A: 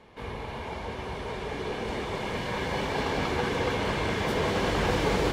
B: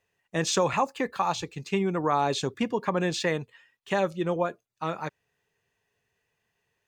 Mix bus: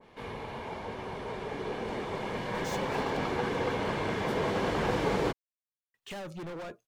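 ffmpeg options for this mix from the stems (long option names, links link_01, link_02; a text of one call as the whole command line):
ffmpeg -i stem1.wav -i stem2.wav -filter_complex "[0:a]equalizer=frequency=62:width_type=o:width=0.68:gain=-15,volume=-2dB[link_01];[1:a]acompressor=threshold=-26dB:ratio=6,asoftclip=type=hard:threshold=-39dB,adelay=2200,volume=1dB,asplit=3[link_02][link_03][link_04];[link_02]atrim=end=3.17,asetpts=PTS-STARTPTS,afade=type=out:start_time=3.166:duration=0.004:curve=hsin[link_05];[link_03]atrim=start=3.17:end=5.94,asetpts=PTS-STARTPTS,volume=0[link_06];[link_04]atrim=start=5.94,asetpts=PTS-STARTPTS,afade=type=in:duration=0.004:curve=hsin[link_07];[link_05][link_06][link_07]concat=n=3:v=0:a=1[link_08];[link_01][link_08]amix=inputs=2:normalize=0,adynamicequalizer=threshold=0.00398:dfrequency=1900:dqfactor=0.7:tfrequency=1900:tqfactor=0.7:attack=5:release=100:ratio=0.375:range=2.5:mode=cutabove:tftype=highshelf" out.wav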